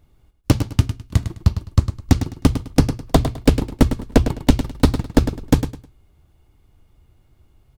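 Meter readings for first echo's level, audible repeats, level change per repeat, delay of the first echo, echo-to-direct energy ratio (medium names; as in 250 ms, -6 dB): -10.0 dB, 3, -12.0 dB, 104 ms, -9.5 dB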